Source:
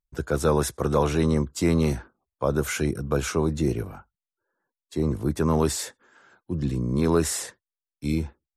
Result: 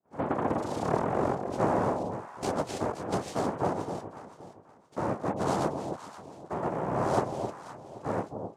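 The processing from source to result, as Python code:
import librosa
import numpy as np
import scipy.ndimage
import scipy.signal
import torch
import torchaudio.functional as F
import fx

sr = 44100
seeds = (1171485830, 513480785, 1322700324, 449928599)

y = fx.tape_start_head(x, sr, length_s=1.95)
y = fx.lowpass(y, sr, hz=2300.0, slope=6)
y = fx.tilt_shelf(y, sr, db=3.5, hz=970.0)
y = fx.env_lowpass_down(y, sr, base_hz=1000.0, full_db=-14.5)
y = fx.noise_vocoder(y, sr, seeds[0], bands=2)
y = fx.echo_alternate(y, sr, ms=261, hz=890.0, feedback_pct=51, wet_db=-6)
y = y * librosa.db_to_amplitude(-8.5)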